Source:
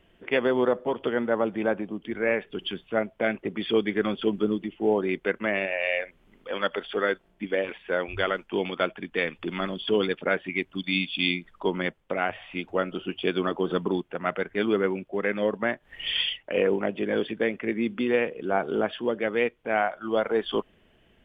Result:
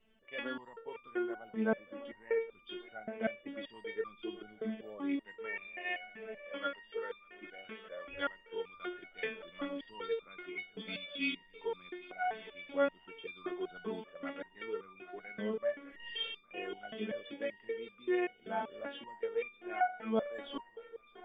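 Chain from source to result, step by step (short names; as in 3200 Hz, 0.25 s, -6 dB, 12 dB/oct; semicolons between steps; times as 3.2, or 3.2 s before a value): swung echo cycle 0.81 s, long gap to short 3:1, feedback 59%, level -16 dB; stepped resonator 5.2 Hz 220–1200 Hz; gain +3 dB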